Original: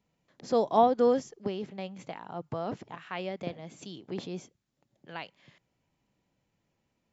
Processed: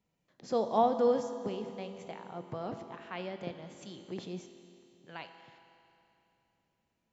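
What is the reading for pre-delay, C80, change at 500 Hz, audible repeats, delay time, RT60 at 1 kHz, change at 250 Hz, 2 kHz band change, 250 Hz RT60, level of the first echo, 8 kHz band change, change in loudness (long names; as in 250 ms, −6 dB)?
5 ms, 9.5 dB, −3.0 dB, no echo audible, no echo audible, 2.9 s, −3.5 dB, −4.0 dB, 2.9 s, no echo audible, can't be measured, −4.0 dB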